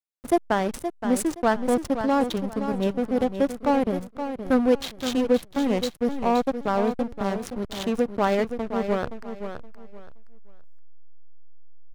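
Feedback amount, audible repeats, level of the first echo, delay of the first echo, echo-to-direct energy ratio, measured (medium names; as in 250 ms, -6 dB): 25%, 3, -9.0 dB, 521 ms, -8.5 dB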